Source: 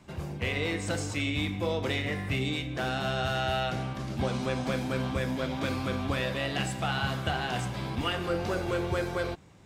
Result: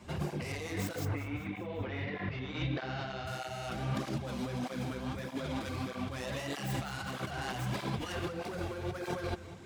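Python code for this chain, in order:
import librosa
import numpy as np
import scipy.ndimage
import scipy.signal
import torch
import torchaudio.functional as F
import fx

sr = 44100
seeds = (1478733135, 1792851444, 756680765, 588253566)

y = fx.tracing_dist(x, sr, depth_ms=0.16)
y = fx.lowpass(y, sr, hz=fx.line((1.04, 2200.0), (3.26, 5400.0)), slope=24, at=(1.04, 3.26), fade=0.02)
y = fx.over_compress(y, sr, threshold_db=-36.0, ratio=-1.0)
y = fx.echo_feedback(y, sr, ms=195, feedback_pct=57, wet_db=-15.5)
y = fx.flanger_cancel(y, sr, hz=1.6, depth_ms=7.5)
y = F.gain(torch.from_numpy(y), 1.5).numpy()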